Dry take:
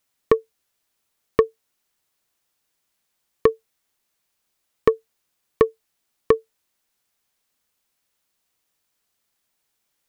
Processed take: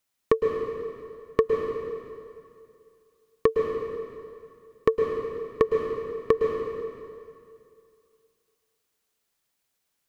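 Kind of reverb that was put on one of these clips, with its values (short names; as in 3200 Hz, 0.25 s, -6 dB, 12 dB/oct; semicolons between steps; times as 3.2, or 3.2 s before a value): plate-style reverb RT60 2.4 s, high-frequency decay 0.85×, pre-delay 0.1 s, DRR 1.5 dB; gain -4.5 dB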